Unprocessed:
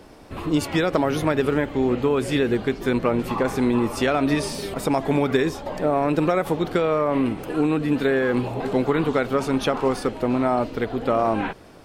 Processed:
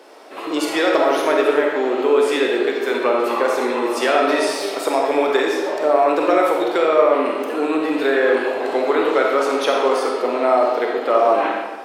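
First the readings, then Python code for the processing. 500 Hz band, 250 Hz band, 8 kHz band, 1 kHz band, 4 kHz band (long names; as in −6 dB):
+6.5 dB, −1.5 dB, +4.0 dB, +7.0 dB, +6.0 dB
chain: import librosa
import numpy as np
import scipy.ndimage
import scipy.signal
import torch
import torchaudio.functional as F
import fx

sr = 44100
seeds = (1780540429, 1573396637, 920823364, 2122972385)

y = scipy.signal.sosfilt(scipy.signal.butter(4, 360.0, 'highpass', fs=sr, output='sos'), x)
y = fx.high_shelf(y, sr, hz=8200.0, db=-4.0)
y = fx.rev_freeverb(y, sr, rt60_s=1.3, hf_ratio=0.8, predelay_ms=5, drr_db=-0.5)
y = F.gain(torch.from_numpy(y), 3.5).numpy()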